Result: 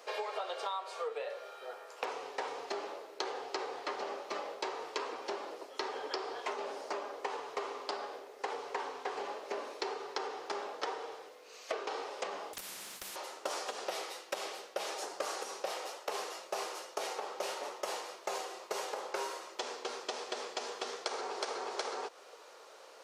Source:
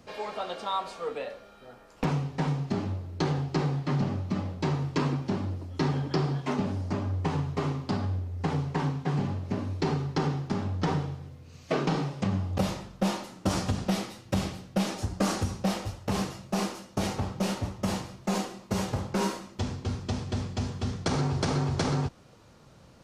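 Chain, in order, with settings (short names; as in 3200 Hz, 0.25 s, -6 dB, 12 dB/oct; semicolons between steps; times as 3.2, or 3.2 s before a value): Chebyshev high-pass 420 Hz, order 4; compressor 10:1, threshold -40 dBFS, peak gain reduction 15.5 dB; 12.53–13.16 spectral compressor 10:1; gain +5.5 dB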